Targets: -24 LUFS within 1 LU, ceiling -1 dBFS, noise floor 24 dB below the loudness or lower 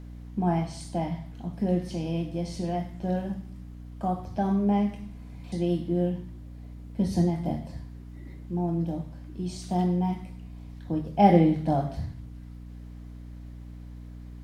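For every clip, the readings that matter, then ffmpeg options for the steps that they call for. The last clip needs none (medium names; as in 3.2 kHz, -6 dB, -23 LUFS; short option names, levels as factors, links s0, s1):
hum 60 Hz; highest harmonic 300 Hz; hum level -38 dBFS; loudness -28.0 LUFS; peak level -6.0 dBFS; loudness target -24.0 LUFS
-> -af "bandreject=f=60:t=h:w=4,bandreject=f=120:t=h:w=4,bandreject=f=180:t=h:w=4,bandreject=f=240:t=h:w=4,bandreject=f=300:t=h:w=4"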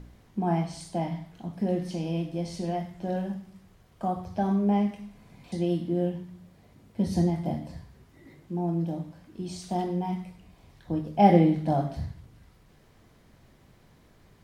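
hum not found; loudness -28.5 LUFS; peak level -6.0 dBFS; loudness target -24.0 LUFS
-> -af "volume=1.68"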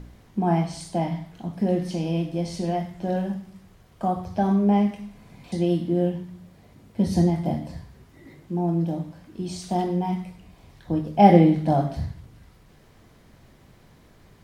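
loudness -24.0 LUFS; peak level -1.5 dBFS; noise floor -54 dBFS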